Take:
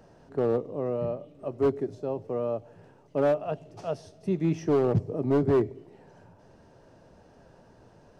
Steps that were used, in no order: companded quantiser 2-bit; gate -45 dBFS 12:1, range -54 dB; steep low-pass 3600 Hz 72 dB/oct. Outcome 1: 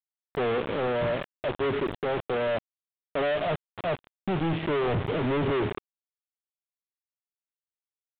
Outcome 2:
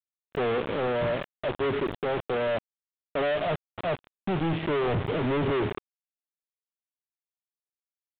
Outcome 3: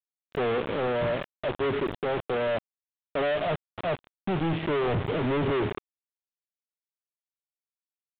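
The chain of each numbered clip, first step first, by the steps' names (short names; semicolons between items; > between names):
gate > companded quantiser > steep low-pass; companded quantiser > gate > steep low-pass; companded quantiser > steep low-pass > gate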